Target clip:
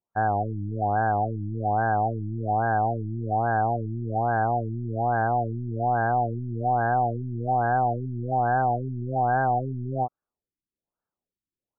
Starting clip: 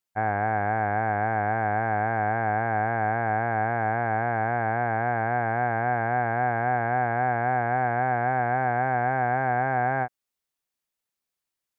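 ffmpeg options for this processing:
-af "asoftclip=type=tanh:threshold=-17.5dB,afftfilt=real='re*lt(b*sr/1024,350*pow(1800/350,0.5+0.5*sin(2*PI*1.2*pts/sr)))':imag='im*lt(b*sr/1024,350*pow(1800/350,0.5+0.5*sin(2*PI*1.2*pts/sr)))':win_size=1024:overlap=0.75,volume=4dB"

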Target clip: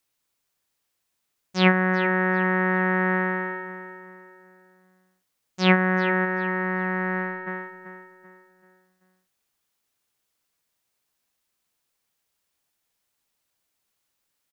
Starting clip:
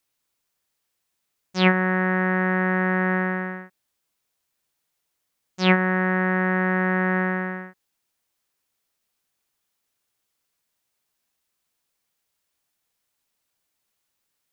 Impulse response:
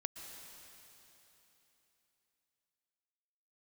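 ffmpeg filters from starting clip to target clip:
-filter_complex "[0:a]asplit=3[a][b][c];[a]afade=t=out:st=6.24:d=0.02[d];[b]agate=range=-33dB:threshold=-17dB:ratio=3:detection=peak,afade=t=in:st=6.24:d=0.02,afade=t=out:st=7.46:d=0.02[e];[c]afade=t=in:st=7.46:d=0.02[f];[d][e][f]amix=inputs=3:normalize=0,asplit=2[g][h];[h]adelay=386,lowpass=f=3.3k:p=1,volume=-10dB,asplit=2[i][j];[j]adelay=386,lowpass=f=3.3k:p=1,volume=0.4,asplit=2[k][l];[l]adelay=386,lowpass=f=3.3k:p=1,volume=0.4,asplit=2[m][n];[n]adelay=386,lowpass=f=3.3k:p=1,volume=0.4[o];[g][i][k][m][o]amix=inputs=5:normalize=0"

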